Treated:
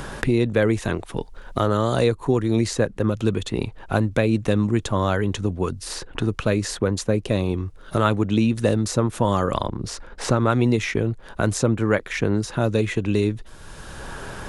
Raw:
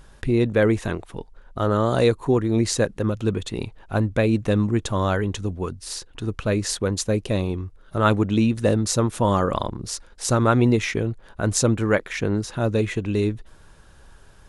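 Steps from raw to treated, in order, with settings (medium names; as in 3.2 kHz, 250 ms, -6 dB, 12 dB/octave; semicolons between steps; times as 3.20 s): 9.68–10.50 s: treble shelf 7 kHz -9.5 dB; three bands compressed up and down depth 70%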